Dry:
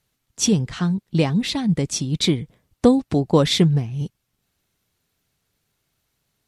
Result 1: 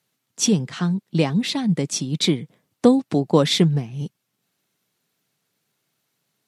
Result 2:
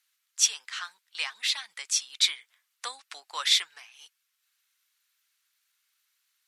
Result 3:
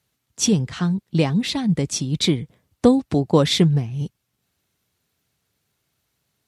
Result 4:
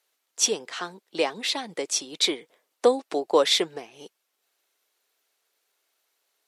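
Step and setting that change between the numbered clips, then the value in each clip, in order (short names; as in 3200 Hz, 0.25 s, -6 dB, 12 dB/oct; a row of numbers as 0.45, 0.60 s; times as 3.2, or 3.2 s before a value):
HPF, cutoff: 140, 1300, 56, 410 Hz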